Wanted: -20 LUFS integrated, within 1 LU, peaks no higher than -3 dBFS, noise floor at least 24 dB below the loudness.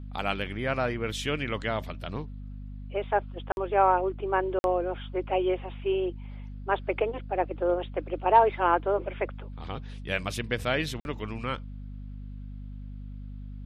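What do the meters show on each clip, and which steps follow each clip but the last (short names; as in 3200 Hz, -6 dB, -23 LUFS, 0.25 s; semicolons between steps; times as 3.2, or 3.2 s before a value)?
dropouts 3; longest dropout 51 ms; hum 50 Hz; harmonics up to 250 Hz; hum level -37 dBFS; loudness -29.0 LUFS; peak -7.5 dBFS; loudness target -20.0 LUFS
-> interpolate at 3.52/4.59/11, 51 ms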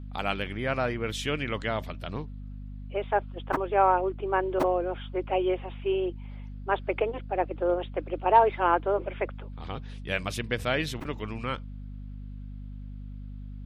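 dropouts 0; hum 50 Hz; harmonics up to 250 Hz; hum level -37 dBFS
-> de-hum 50 Hz, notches 5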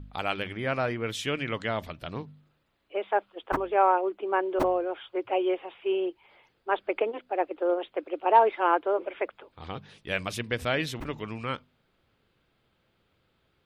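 hum none; loudness -28.5 LUFS; peak -7.0 dBFS; loudness target -20.0 LUFS
-> gain +8.5 dB; limiter -3 dBFS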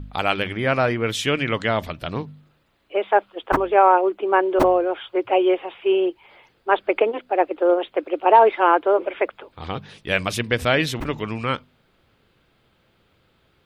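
loudness -20.5 LUFS; peak -3.0 dBFS; noise floor -63 dBFS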